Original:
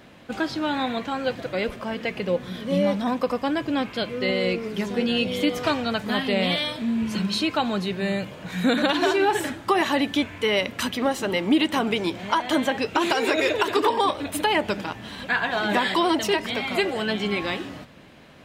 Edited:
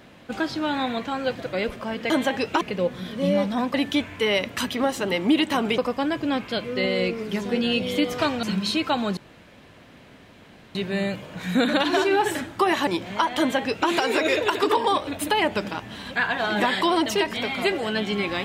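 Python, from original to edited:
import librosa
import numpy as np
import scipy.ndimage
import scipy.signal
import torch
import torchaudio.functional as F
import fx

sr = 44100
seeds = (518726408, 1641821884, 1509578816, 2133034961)

y = fx.edit(x, sr, fx.cut(start_s=5.88, length_s=1.22),
    fx.insert_room_tone(at_s=7.84, length_s=1.58),
    fx.move(start_s=9.96, length_s=2.04, to_s=3.23),
    fx.duplicate(start_s=12.51, length_s=0.51, to_s=2.1), tone=tone)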